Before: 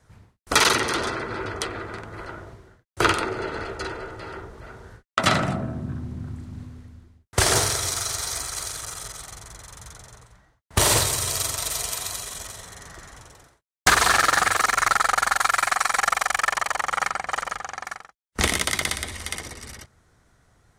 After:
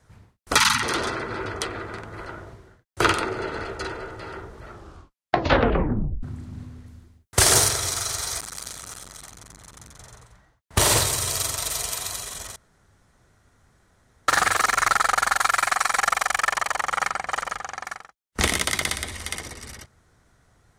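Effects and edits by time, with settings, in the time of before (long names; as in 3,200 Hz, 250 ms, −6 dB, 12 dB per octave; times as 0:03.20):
0:00.57–0:00.83: time-frequency box erased 260–820 Hz
0:04.62: tape stop 1.61 s
0:06.86–0:07.69: high-shelf EQ 5,600 Hz +7.5 dB
0:08.40–0:09.99: saturating transformer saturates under 2,300 Hz
0:12.56–0:14.28: fill with room tone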